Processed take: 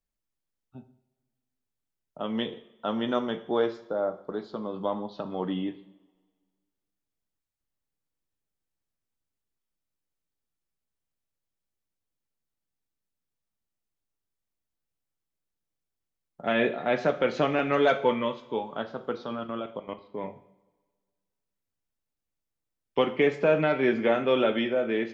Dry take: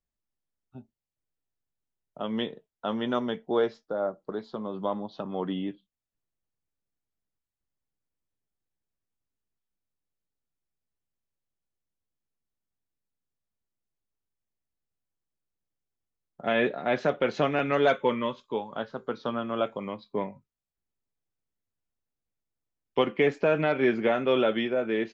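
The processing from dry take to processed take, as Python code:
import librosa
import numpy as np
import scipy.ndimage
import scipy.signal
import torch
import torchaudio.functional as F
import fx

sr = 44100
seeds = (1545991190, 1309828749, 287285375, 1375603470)

y = fx.level_steps(x, sr, step_db=17, at=(19.25, 20.24))
y = fx.rev_double_slope(y, sr, seeds[0], early_s=0.59, late_s=1.7, knee_db=-18, drr_db=8.5)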